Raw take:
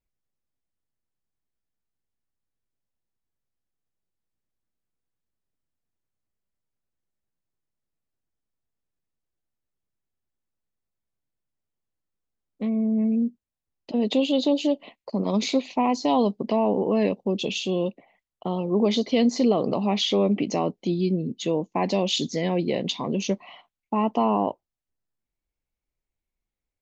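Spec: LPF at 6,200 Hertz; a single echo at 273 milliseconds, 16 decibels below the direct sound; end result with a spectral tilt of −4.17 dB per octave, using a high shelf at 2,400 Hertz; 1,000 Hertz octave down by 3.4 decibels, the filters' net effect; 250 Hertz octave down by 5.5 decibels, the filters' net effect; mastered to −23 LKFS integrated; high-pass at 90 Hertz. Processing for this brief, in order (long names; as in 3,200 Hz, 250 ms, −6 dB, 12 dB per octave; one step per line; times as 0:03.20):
high-pass filter 90 Hz
low-pass filter 6,200 Hz
parametric band 250 Hz −6.5 dB
parametric band 1,000 Hz −5 dB
high-shelf EQ 2,400 Hz +6 dB
single-tap delay 273 ms −16 dB
level +4 dB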